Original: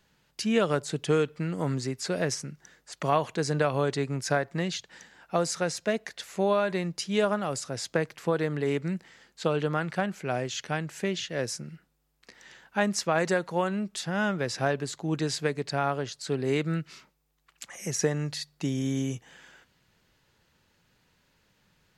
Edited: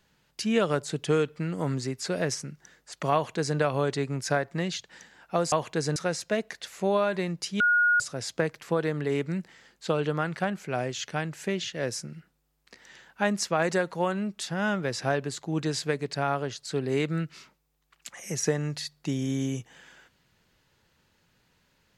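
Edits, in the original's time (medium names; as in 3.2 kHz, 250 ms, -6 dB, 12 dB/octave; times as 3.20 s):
3.14–3.58 s: copy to 5.52 s
7.16–7.56 s: bleep 1.44 kHz -18.5 dBFS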